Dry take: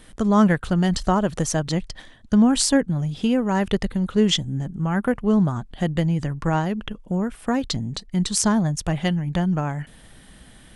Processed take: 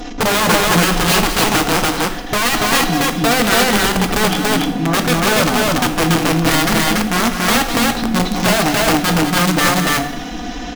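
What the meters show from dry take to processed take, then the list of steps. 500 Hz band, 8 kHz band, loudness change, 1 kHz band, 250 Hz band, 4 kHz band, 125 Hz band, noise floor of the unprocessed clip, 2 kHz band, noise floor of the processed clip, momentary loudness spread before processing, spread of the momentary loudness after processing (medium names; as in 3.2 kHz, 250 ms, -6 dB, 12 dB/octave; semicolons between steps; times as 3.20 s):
+7.5 dB, +9.5 dB, +7.5 dB, +12.0 dB, +3.0 dB, +12.5 dB, +2.5 dB, -48 dBFS, +16.5 dB, -26 dBFS, 10 LU, 5 LU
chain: one-bit delta coder 32 kbps, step -29 dBFS; peaking EQ 4.3 kHz -8 dB 0.32 oct; comb 4.1 ms, depth 95%; in parallel at -0.5 dB: peak limiter -14 dBFS, peak gain reduction 11.5 dB; on the sum: small resonant body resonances 320/730/4000 Hz, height 14 dB, ringing for 40 ms; integer overflow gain 5.5 dB; on a send: loudspeakers at several distances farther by 69 m -9 dB, 98 m -1 dB; on the sum: two-slope reverb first 0.67 s, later 3.1 s, from -21 dB, DRR 7 dB; trim -5.5 dB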